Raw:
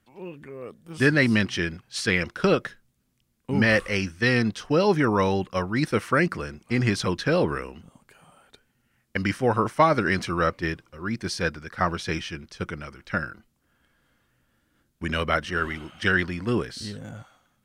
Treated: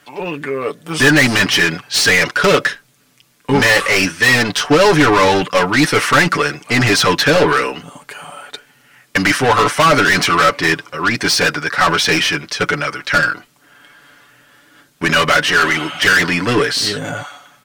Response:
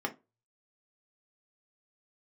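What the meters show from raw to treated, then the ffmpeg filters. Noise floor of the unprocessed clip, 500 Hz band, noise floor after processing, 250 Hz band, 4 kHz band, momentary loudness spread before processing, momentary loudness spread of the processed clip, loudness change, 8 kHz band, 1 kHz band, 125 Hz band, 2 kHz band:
-71 dBFS, +9.5 dB, -55 dBFS, +7.5 dB, +17.5 dB, 16 LU, 12 LU, +11.5 dB, +19.0 dB, +12.5 dB, +6.0 dB, +13.5 dB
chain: -filter_complex "[0:a]asplit=2[a][b];[b]highpass=f=720:p=1,volume=29dB,asoftclip=type=tanh:threshold=-5.5dB[c];[a][c]amix=inputs=2:normalize=0,lowpass=f=7k:p=1,volume=-6dB,aecho=1:1:6.9:0.67"

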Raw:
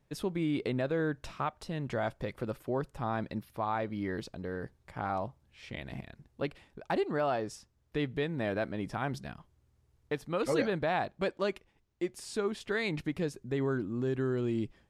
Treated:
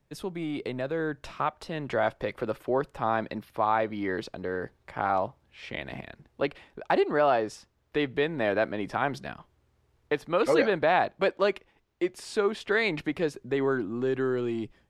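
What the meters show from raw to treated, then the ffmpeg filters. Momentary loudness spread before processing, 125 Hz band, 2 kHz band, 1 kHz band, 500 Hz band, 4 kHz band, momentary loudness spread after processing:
11 LU, -2.0 dB, +7.5 dB, +7.5 dB, +6.5 dB, +5.5 dB, 13 LU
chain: -filter_complex "[0:a]acrossover=split=290|4200[a][b][c];[a]asoftclip=type=tanh:threshold=-36.5dB[d];[b]dynaudnorm=f=890:g=3:m=8dB[e];[d][e][c]amix=inputs=3:normalize=0"

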